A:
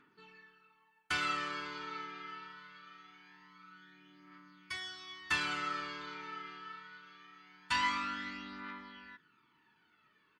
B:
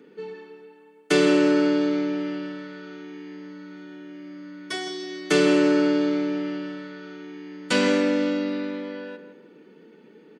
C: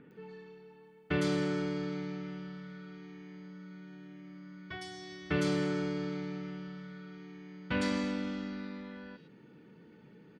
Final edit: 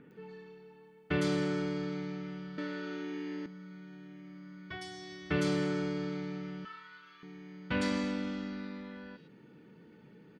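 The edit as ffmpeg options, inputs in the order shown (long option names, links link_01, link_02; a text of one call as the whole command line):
ffmpeg -i take0.wav -i take1.wav -i take2.wav -filter_complex "[2:a]asplit=3[link_01][link_02][link_03];[link_01]atrim=end=2.582[link_04];[1:a]atrim=start=2.578:end=3.462[link_05];[link_02]atrim=start=3.458:end=6.652[link_06];[0:a]atrim=start=6.648:end=7.232[link_07];[link_03]atrim=start=7.228[link_08];[link_04][link_05]acrossfade=duration=0.004:curve1=hsin:curve2=hsin[link_09];[link_09][link_06]acrossfade=duration=0.004:curve1=hsin:curve2=hsin[link_10];[link_10][link_07]acrossfade=duration=0.004:curve1=hsin:curve2=hsin[link_11];[link_11][link_08]acrossfade=duration=0.004:curve1=hsin:curve2=hsin" out.wav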